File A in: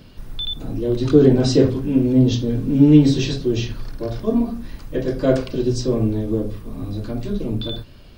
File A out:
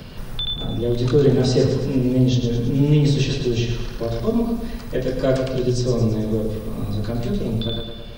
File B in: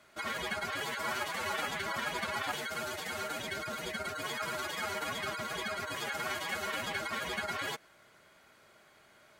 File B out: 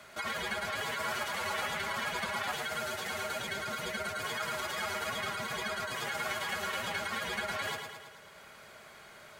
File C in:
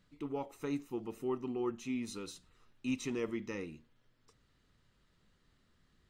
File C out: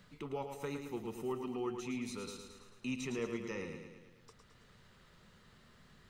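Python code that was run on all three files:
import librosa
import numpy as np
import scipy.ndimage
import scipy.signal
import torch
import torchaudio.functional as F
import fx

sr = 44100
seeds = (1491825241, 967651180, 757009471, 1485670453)

y = fx.peak_eq(x, sr, hz=300.0, db=-11.5, octaves=0.3)
y = fx.echo_feedback(y, sr, ms=109, feedback_pct=49, wet_db=-7)
y = fx.band_squash(y, sr, depth_pct=40)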